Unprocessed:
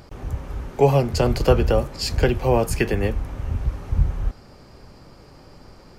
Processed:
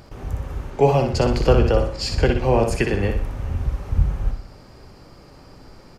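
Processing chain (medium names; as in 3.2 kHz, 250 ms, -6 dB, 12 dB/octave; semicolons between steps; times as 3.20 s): 0.70–3.10 s: low-pass 7.5 kHz 12 dB/octave; feedback delay 61 ms, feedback 40%, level -6 dB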